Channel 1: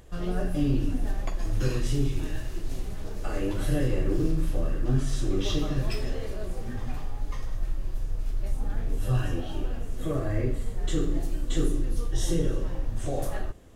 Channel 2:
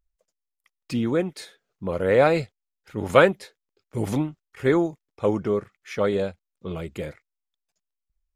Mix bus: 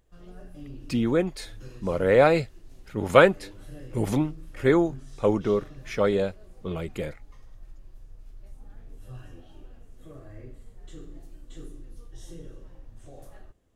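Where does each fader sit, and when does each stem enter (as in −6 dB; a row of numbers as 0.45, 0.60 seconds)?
−17.0, 0.0 decibels; 0.00, 0.00 seconds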